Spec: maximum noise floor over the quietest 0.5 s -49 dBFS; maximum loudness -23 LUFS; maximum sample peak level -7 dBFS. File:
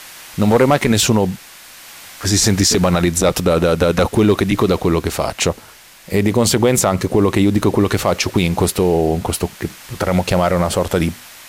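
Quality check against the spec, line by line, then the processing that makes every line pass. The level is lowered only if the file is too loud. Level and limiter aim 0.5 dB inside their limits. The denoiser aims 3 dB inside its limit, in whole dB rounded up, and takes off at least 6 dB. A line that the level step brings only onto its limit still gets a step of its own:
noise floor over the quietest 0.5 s -42 dBFS: fail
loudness -16.0 LUFS: fail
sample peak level -4.0 dBFS: fail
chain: trim -7.5 dB

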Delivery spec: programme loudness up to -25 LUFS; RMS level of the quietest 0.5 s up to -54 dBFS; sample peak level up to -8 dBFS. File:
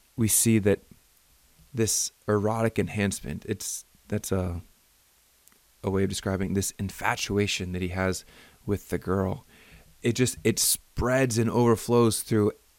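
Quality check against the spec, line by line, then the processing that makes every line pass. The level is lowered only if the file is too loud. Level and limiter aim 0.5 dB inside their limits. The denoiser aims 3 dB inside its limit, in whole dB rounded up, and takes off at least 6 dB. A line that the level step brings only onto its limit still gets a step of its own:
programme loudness -26.5 LUFS: pass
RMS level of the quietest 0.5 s -63 dBFS: pass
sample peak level -7.0 dBFS: fail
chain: peak limiter -8.5 dBFS

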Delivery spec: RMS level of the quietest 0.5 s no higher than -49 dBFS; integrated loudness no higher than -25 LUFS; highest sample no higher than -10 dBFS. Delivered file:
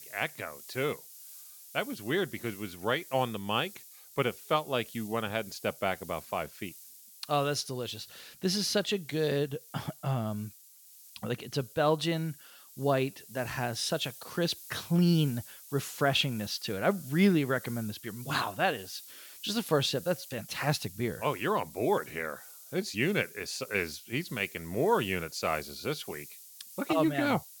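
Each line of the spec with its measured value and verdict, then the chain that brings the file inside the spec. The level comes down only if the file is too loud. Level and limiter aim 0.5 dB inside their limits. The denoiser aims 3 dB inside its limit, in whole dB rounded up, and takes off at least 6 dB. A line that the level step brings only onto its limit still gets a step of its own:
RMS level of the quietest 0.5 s -55 dBFS: pass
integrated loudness -31.5 LUFS: pass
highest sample -14.0 dBFS: pass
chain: none needed

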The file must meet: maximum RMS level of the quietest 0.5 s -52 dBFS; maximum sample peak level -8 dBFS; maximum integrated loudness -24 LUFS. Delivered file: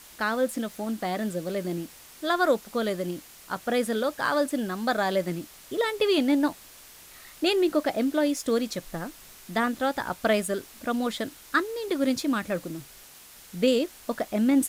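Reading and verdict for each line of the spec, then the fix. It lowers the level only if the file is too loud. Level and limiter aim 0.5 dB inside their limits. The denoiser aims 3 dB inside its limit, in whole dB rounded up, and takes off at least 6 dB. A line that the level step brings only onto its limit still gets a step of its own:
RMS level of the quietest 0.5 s -49 dBFS: fail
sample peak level -10.5 dBFS: pass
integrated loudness -27.5 LUFS: pass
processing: noise reduction 6 dB, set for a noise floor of -49 dBFS

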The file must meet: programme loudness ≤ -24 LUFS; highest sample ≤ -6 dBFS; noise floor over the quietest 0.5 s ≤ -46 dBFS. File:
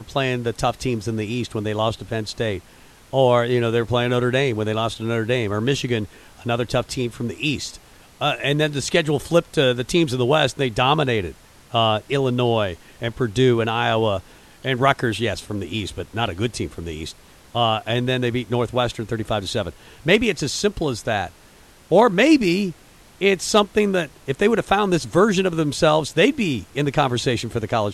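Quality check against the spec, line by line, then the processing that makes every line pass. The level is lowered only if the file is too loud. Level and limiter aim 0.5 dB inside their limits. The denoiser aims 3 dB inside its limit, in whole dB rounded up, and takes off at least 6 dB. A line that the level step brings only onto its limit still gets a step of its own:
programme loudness -21.0 LUFS: fail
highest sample -2.5 dBFS: fail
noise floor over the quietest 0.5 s -49 dBFS: pass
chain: trim -3.5 dB; peak limiter -6.5 dBFS

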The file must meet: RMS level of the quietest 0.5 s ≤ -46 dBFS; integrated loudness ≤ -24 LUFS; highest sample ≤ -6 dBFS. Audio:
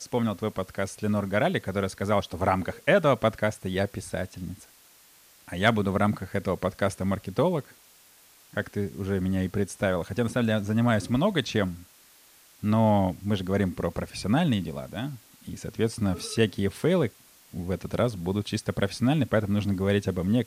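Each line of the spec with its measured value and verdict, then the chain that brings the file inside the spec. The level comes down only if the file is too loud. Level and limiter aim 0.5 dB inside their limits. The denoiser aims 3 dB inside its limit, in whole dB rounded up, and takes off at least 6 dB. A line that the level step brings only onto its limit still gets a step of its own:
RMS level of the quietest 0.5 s -56 dBFS: pass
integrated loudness -27.0 LUFS: pass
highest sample -7.0 dBFS: pass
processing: none needed

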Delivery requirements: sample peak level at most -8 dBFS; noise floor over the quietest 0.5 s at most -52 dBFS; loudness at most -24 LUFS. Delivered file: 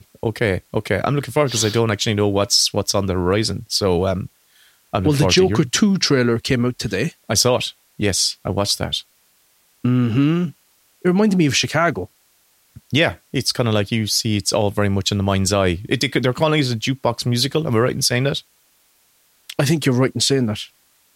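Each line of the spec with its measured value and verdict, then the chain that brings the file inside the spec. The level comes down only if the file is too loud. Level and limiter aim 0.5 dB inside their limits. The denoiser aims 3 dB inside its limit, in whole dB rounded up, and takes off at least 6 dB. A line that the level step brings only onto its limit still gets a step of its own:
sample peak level -4.0 dBFS: fail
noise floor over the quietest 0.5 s -59 dBFS: pass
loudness -18.5 LUFS: fail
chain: trim -6 dB

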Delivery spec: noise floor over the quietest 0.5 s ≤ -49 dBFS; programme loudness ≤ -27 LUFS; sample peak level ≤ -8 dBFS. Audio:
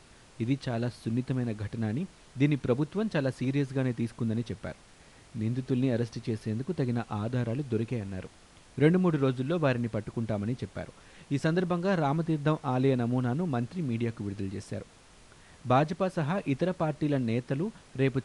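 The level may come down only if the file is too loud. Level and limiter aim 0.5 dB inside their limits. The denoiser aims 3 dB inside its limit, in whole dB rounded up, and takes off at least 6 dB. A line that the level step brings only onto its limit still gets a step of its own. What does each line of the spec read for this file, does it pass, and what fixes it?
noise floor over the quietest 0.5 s -55 dBFS: pass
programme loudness -30.0 LUFS: pass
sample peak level -10.0 dBFS: pass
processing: none needed

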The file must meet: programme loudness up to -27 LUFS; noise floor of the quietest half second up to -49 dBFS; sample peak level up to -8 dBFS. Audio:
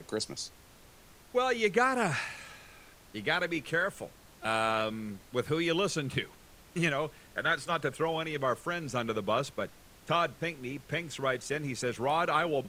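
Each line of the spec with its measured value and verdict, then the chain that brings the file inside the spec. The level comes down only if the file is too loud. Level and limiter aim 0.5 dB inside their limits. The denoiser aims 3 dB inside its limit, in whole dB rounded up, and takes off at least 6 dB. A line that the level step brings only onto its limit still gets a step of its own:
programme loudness -31.5 LUFS: pass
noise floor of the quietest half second -56 dBFS: pass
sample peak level -12.0 dBFS: pass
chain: none needed

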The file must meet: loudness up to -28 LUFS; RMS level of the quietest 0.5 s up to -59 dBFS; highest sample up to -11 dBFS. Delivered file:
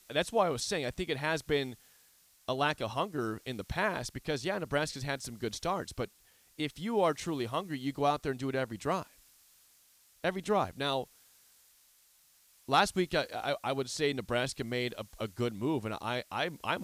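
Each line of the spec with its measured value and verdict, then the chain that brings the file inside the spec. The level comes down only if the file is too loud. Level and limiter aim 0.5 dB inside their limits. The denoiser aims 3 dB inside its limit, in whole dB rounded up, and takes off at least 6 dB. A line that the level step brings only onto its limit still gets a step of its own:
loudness -33.5 LUFS: pass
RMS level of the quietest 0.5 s -65 dBFS: pass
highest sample -14.5 dBFS: pass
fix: none needed

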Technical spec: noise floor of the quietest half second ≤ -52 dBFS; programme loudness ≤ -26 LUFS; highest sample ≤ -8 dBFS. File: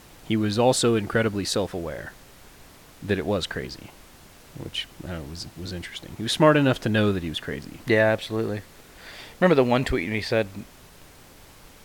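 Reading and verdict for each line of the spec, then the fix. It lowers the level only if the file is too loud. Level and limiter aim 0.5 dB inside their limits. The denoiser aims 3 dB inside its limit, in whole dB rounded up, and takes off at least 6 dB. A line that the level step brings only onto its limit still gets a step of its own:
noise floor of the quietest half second -49 dBFS: fail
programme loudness -24.0 LUFS: fail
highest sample -4.0 dBFS: fail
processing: noise reduction 6 dB, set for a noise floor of -49 dBFS; trim -2.5 dB; peak limiter -8.5 dBFS

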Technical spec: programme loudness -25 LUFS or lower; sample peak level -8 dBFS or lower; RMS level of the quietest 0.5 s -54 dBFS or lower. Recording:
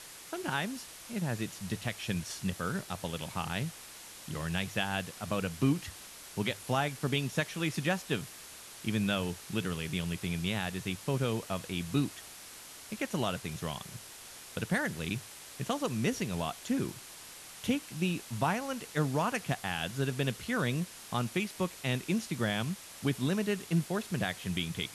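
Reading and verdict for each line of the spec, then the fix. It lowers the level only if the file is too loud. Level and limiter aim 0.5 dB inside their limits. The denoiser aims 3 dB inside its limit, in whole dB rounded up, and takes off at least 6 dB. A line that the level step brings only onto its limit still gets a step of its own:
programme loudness -34.0 LUFS: pass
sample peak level -16.0 dBFS: pass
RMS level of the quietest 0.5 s -49 dBFS: fail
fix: noise reduction 8 dB, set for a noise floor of -49 dBFS

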